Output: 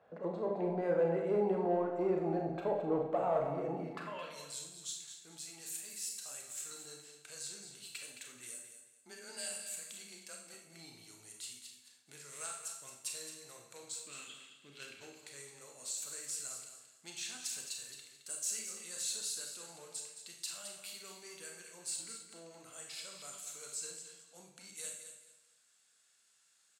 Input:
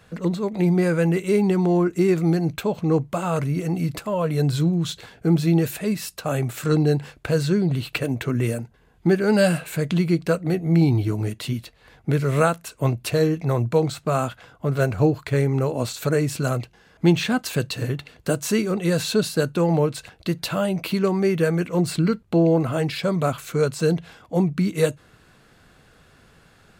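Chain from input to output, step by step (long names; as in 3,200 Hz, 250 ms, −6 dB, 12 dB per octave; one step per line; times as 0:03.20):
0:14.04–0:15.01: drawn EQ curve 110 Hz 0 dB, 320 Hz +12 dB, 710 Hz −14 dB, 3,100 Hz +12 dB, 6,800 Hz −10 dB
harmonic generator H 3 −16 dB, 5 −22 dB, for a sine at −5.5 dBFS
band-pass filter sweep 650 Hz → 7,700 Hz, 0:03.82–0:04.43
in parallel at −6.5 dB: soft clipping −28.5 dBFS, distortion −13 dB
0:08.62–0:10.54: on the sum: frequency shifter +23 Hz
on a send: repeating echo 217 ms, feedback 26%, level −9.5 dB
on the sum: four-comb reverb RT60 0.59 s, combs from 28 ms, DRR 1.5 dB
level −6 dB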